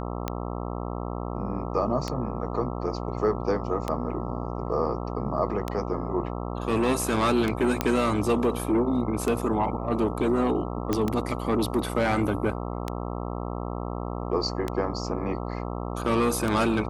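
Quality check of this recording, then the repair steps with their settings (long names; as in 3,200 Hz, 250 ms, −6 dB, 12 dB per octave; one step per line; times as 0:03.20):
mains buzz 60 Hz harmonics 22 −32 dBFS
scratch tick 33 1/3 rpm −13 dBFS
0:07.81: click −8 dBFS
0:10.93: click −11 dBFS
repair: click removal
hum removal 60 Hz, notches 22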